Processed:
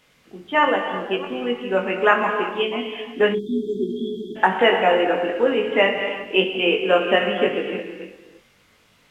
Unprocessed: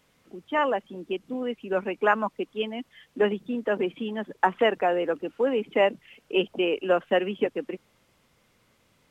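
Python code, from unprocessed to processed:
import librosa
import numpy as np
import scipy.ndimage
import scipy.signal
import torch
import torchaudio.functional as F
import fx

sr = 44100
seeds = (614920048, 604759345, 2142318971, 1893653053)

p1 = fx.reverse_delay(x, sr, ms=312, wet_db=-11.5)
p2 = fx.peak_eq(p1, sr, hz=2700.0, db=5.5, octaves=2.2)
p3 = fx.rev_gated(p2, sr, seeds[0], gate_ms=370, shape='flat', drr_db=4.5)
p4 = fx.spec_erase(p3, sr, start_s=3.33, length_s=1.03, low_hz=450.0, high_hz=3200.0)
p5 = p4 + fx.room_early_taps(p4, sr, ms=(21, 60), db=(-4.5, -17.5), dry=0)
y = F.gain(torch.from_numpy(p5), 2.0).numpy()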